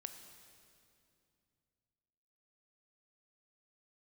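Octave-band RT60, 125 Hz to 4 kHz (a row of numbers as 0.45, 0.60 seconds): 3.6, 3.2, 2.7, 2.4, 2.3, 2.2 seconds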